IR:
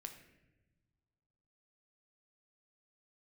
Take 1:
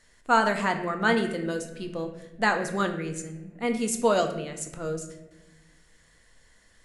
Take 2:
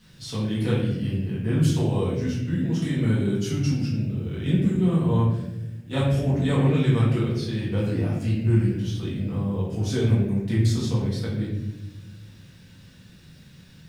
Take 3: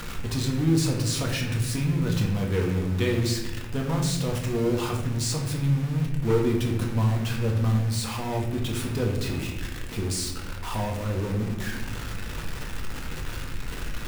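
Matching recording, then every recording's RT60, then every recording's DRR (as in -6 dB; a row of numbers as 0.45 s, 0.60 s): 1; no single decay rate, 1.0 s, 1.0 s; 5.0 dB, -9.0 dB, -1.0 dB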